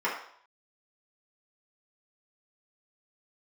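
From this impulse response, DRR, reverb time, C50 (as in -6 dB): -7.5 dB, 0.60 s, 5.0 dB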